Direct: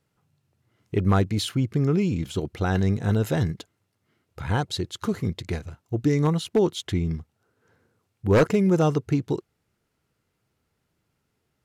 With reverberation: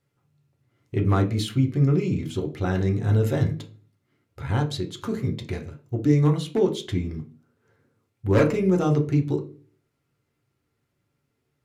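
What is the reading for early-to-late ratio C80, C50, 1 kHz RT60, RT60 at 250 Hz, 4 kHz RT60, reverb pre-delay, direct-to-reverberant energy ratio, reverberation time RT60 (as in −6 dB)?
18.5 dB, 13.0 dB, 0.35 s, 0.55 s, 0.35 s, 3 ms, 1.0 dB, 0.40 s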